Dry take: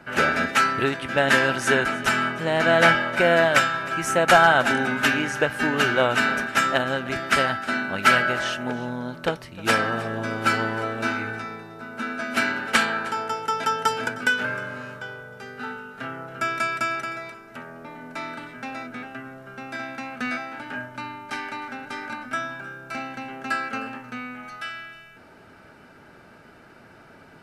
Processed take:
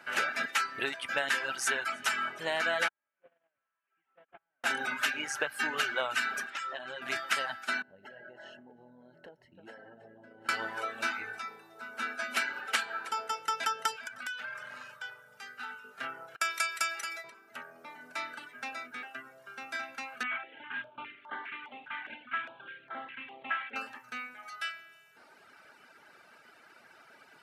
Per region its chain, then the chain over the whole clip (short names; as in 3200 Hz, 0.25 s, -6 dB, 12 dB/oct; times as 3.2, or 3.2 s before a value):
2.88–4.64 delta modulation 16 kbps, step -30.5 dBFS + gate -17 dBFS, range -45 dB
6.5–7.02 doubler 13 ms -7.5 dB + compressor, threshold -28 dBFS + air absorption 66 m
7.82–10.49 running mean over 37 samples + compressor 10:1, threshold -35 dBFS
13.96–15.84 bell 370 Hz -10 dB 0.96 oct + compressor 10:1, threshold -30 dBFS + core saturation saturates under 1000 Hz
16.36–17.24 gate with hold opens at -22 dBFS, closes at -27 dBFS + HPF 390 Hz 6 dB/oct + high shelf 3200 Hz +10 dB
20.23–23.76 CVSD 16 kbps + stepped notch 4.9 Hz 430–2500 Hz
whole clip: HPF 1400 Hz 6 dB/oct; reverb removal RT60 0.97 s; compressor 5:1, threshold -27 dBFS